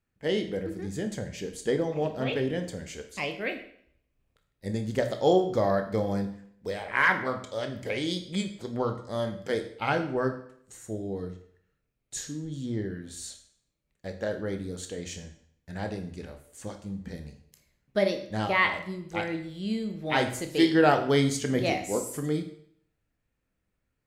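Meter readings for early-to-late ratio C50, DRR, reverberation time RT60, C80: 10.0 dB, 5.5 dB, 0.65 s, 13.0 dB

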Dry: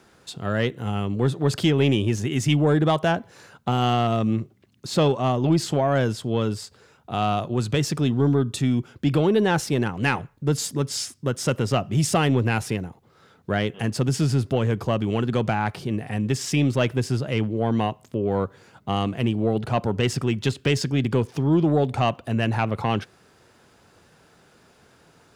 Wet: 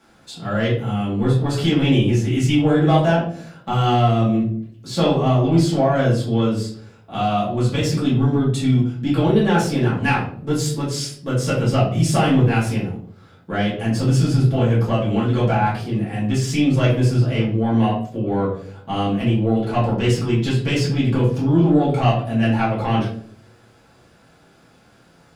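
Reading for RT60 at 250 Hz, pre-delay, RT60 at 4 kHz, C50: 0.75 s, 4 ms, 0.40 s, 4.5 dB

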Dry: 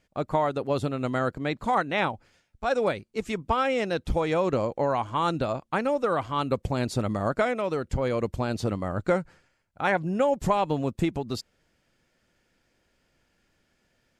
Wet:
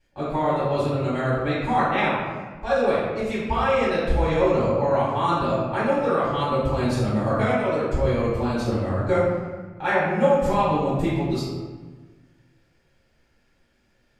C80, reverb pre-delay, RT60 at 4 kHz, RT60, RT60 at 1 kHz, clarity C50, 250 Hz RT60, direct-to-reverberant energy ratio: 2.0 dB, 3 ms, 0.85 s, 1.4 s, 1.4 s, -1.0 dB, 1.8 s, -11.5 dB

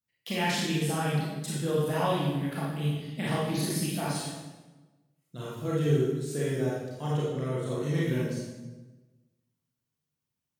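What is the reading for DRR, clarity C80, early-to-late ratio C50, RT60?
-7.0 dB, 2.0 dB, -2.0 dB, 1.2 s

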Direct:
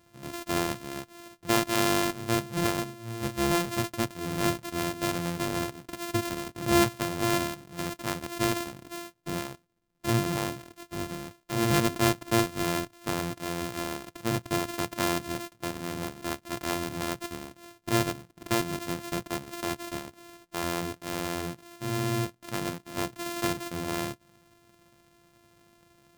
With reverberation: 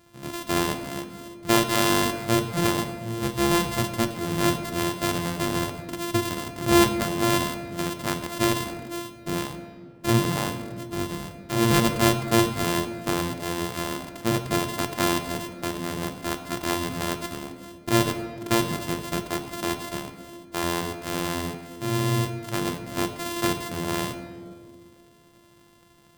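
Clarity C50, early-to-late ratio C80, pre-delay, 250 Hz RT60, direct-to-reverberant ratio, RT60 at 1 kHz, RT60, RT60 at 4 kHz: 9.5 dB, 10.5 dB, 3 ms, 2.9 s, 7.0 dB, 1.7 s, 2.2 s, 1.1 s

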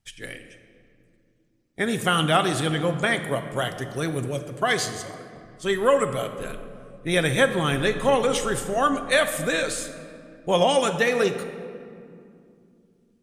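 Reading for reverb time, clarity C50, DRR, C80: 2.5 s, 9.5 dB, 7.0 dB, 10.5 dB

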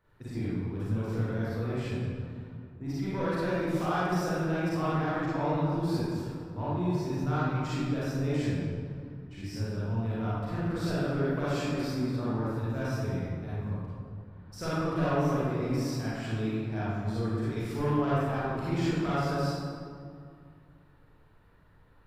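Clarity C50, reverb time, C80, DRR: -6.0 dB, 2.2 s, -2.0 dB, -10.0 dB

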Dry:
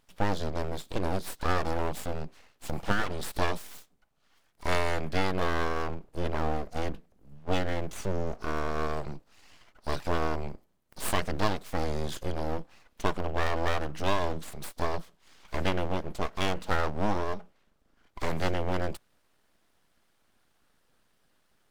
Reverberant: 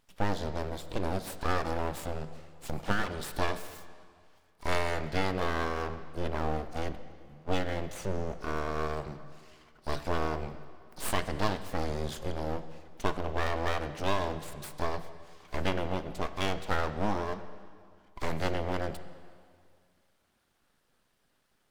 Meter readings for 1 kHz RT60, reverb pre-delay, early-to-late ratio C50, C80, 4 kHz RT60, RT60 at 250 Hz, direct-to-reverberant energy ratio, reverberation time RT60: 2.1 s, 4 ms, 12.0 dB, 13.0 dB, 2.0 s, 2.1 s, 11.0 dB, 2.1 s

